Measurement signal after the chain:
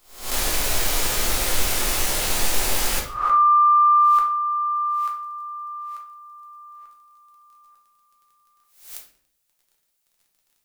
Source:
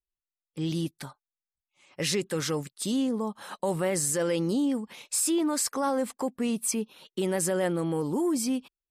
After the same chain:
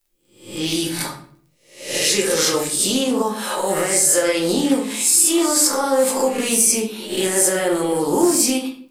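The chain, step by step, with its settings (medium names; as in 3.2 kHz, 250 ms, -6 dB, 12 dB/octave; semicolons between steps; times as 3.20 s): reverse spectral sustain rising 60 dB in 0.51 s; peaking EQ 150 Hz -12.5 dB 1.4 oct; peak limiter -23.5 dBFS; crackle 20 per s -62 dBFS; treble shelf 4.8 kHz +10 dB; simulated room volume 72 m³, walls mixed, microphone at 0.82 m; loudspeaker Doppler distortion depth 0.11 ms; trim +9 dB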